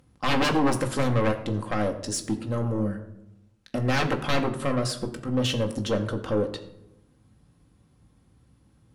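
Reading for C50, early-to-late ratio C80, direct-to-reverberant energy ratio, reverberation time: 12.0 dB, 13.5 dB, 3.0 dB, 0.90 s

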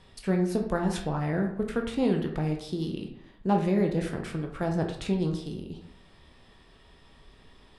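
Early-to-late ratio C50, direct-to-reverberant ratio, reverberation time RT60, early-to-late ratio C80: 7.5 dB, 2.0 dB, 0.70 s, 11.0 dB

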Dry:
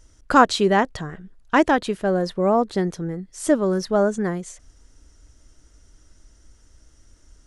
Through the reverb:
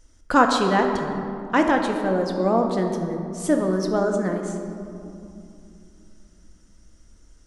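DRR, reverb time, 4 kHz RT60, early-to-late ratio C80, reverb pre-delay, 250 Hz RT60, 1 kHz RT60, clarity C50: 3.0 dB, 2.7 s, 1.2 s, 6.0 dB, 3 ms, 3.9 s, 2.6 s, 5.0 dB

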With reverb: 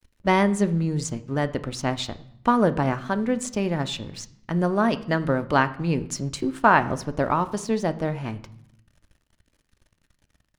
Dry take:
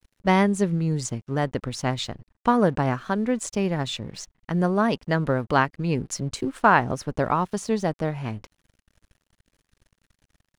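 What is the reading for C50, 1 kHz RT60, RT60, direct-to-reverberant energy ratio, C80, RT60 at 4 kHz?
16.5 dB, 0.70 s, 0.70 s, 10.5 dB, 19.5 dB, 0.60 s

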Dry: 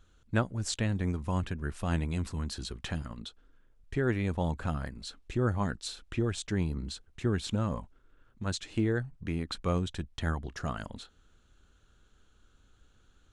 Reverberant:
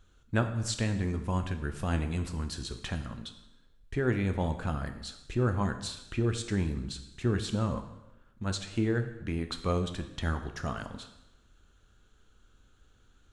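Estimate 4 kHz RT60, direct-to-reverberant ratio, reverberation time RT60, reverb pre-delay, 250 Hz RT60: 0.90 s, 7.0 dB, 0.95 s, 5 ms, 1.0 s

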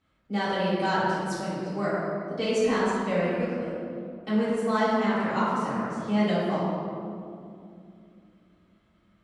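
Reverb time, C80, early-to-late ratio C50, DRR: 2.5 s, −1.0 dB, −3.5 dB, −12.5 dB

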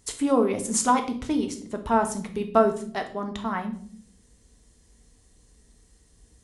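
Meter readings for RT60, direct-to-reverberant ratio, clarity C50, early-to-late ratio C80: 0.55 s, 5.0 dB, 11.0 dB, 15.5 dB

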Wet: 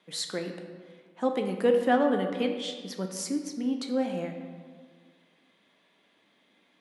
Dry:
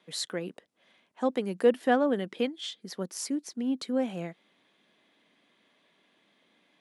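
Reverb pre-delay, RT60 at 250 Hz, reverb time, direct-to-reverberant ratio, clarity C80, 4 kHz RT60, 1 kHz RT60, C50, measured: 5 ms, 1.9 s, 1.7 s, 4.0 dB, 8.0 dB, 1.0 s, 1.7 s, 6.5 dB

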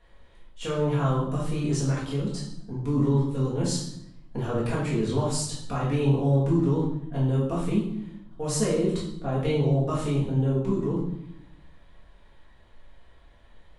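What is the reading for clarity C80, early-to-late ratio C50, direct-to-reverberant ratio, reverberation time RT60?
7.5 dB, 3.5 dB, −7.0 dB, 0.75 s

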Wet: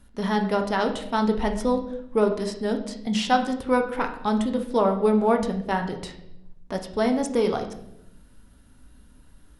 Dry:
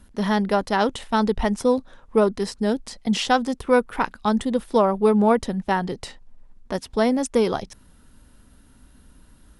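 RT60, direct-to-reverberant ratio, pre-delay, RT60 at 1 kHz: 0.85 s, 4.0 dB, 7 ms, 0.65 s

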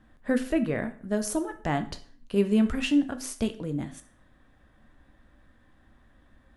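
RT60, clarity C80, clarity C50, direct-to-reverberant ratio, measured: 0.50 s, 18.5 dB, 14.0 dB, 8.0 dB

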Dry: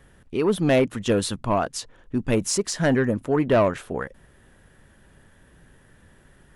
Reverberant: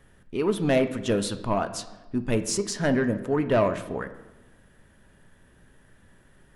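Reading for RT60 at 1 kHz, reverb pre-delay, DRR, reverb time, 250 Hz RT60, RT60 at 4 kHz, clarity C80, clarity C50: 1.0 s, 3 ms, 9.0 dB, 1.1 s, 1.4 s, 0.75 s, 15.0 dB, 12.5 dB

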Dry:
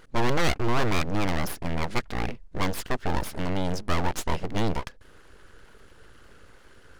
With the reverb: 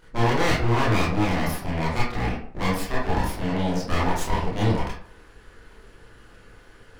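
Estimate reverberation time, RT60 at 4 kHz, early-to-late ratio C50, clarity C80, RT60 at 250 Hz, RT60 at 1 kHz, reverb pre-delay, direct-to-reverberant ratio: 0.55 s, 0.35 s, 2.0 dB, 7.0 dB, 0.50 s, 0.55 s, 22 ms, −7.5 dB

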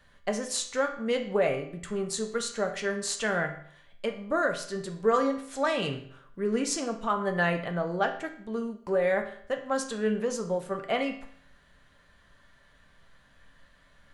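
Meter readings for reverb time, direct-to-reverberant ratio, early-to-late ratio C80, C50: 0.60 s, 3.0 dB, 12.5 dB, 9.0 dB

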